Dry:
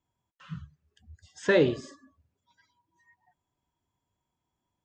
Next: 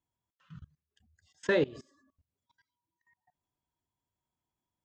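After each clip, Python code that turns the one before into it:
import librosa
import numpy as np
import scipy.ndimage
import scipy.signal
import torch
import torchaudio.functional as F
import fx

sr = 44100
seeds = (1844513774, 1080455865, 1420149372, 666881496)

y = fx.level_steps(x, sr, step_db=22)
y = y * librosa.db_to_amplitude(-2.5)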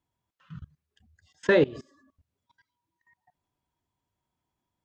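y = fx.high_shelf(x, sr, hz=5600.0, db=-9.0)
y = y * librosa.db_to_amplitude(6.5)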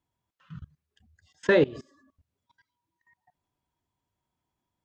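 y = x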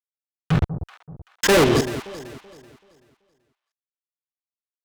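y = fx.fuzz(x, sr, gain_db=45.0, gate_db=-47.0)
y = fx.echo_alternate(y, sr, ms=191, hz=890.0, feedback_pct=55, wet_db=-10.5)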